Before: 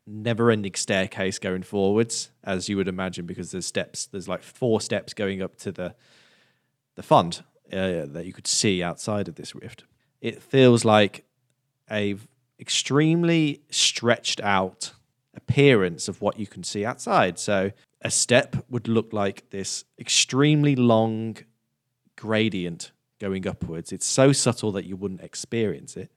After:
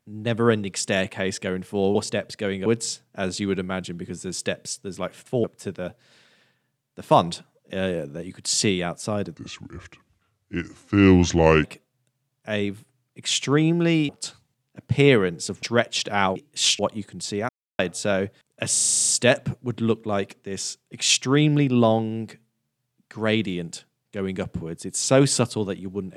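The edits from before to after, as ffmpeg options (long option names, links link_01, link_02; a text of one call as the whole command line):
ffmpeg -i in.wav -filter_complex "[0:a]asplit=21[link_01][link_02][link_03][link_04][link_05][link_06][link_07][link_08][link_09][link_10][link_11][link_12][link_13][link_14][link_15][link_16][link_17][link_18][link_19][link_20][link_21];[link_01]atrim=end=1.952[link_22];[link_02]atrim=start=4.728:end=5.442[link_23];[link_03]atrim=start=1.948:end=4.732[link_24];[link_04]atrim=start=5.438:end=9.364[link_25];[link_05]atrim=start=9.36:end=11.07,asetpts=PTS-STARTPTS,asetrate=33075,aresample=44100[link_26];[link_06]atrim=start=11.066:end=13.522[link_27];[link_07]atrim=start=14.678:end=16.222[link_28];[link_08]atrim=start=13.948:end=14.682[link_29];[link_09]atrim=start=13.518:end=13.952[link_30];[link_10]atrim=start=16.218:end=16.92,asetpts=PTS-STARTPTS,afade=type=out:start_time=0.698:duration=0.004:curve=hsin[link_31];[link_11]atrim=start=16.92:end=17.22,asetpts=PTS-STARTPTS,volume=0[link_32];[link_12]atrim=start=17.22:end=18.192,asetpts=PTS-STARTPTS,afade=type=in:duration=0.004:curve=hsin[link_33];[link_13]atrim=start=18.148:end=18.192[link_34];[link_14]atrim=start=18.148:end=18.192[link_35];[link_15]atrim=start=18.148:end=18.192[link_36];[link_16]atrim=start=18.148:end=18.192[link_37];[link_17]atrim=start=18.148:end=18.192[link_38];[link_18]atrim=start=18.148:end=18.192[link_39];[link_19]atrim=start=18.148:end=18.192[link_40];[link_20]atrim=start=18.148:end=18.192[link_41];[link_21]atrim=start=18.148[link_42];[link_22][link_23]acrossfade=duration=0.004:curve1=hsin:curve2=hsin[link_43];[link_43][link_24]acrossfade=duration=0.004:curve1=hsin:curve2=hsin[link_44];[link_44][link_25]acrossfade=duration=0.004:curve1=hsin:curve2=hsin[link_45];[link_45][link_26]acrossfade=duration=0.004:curve1=hsin:curve2=hsin[link_46];[link_46][link_27]acrossfade=duration=0.004:curve1=hsin:curve2=hsin[link_47];[link_47][link_28]acrossfade=duration=0.004:curve1=hsin:curve2=hsin[link_48];[link_48][link_29]acrossfade=duration=0.004:curve1=hsin:curve2=hsin[link_49];[link_49][link_30]acrossfade=duration=0.004:curve1=hsin:curve2=hsin[link_50];[link_31][link_32][link_33]concat=n=3:v=0:a=1[link_51];[link_50][link_51]acrossfade=duration=0.004:curve1=hsin:curve2=hsin[link_52];[link_52][link_34]acrossfade=duration=0.004:curve1=hsin:curve2=hsin[link_53];[link_53][link_35]acrossfade=duration=0.004:curve1=hsin:curve2=hsin[link_54];[link_54][link_36]acrossfade=duration=0.004:curve1=hsin:curve2=hsin[link_55];[link_55][link_37]acrossfade=duration=0.004:curve1=hsin:curve2=hsin[link_56];[link_56][link_38]acrossfade=duration=0.004:curve1=hsin:curve2=hsin[link_57];[link_57][link_39]acrossfade=duration=0.004:curve1=hsin:curve2=hsin[link_58];[link_58][link_40]acrossfade=duration=0.004:curve1=hsin:curve2=hsin[link_59];[link_59][link_41]acrossfade=duration=0.004:curve1=hsin:curve2=hsin[link_60];[link_60][link_42]acrossfade=duration=0.004:curve1=hsin:curve2=hsin" out.wav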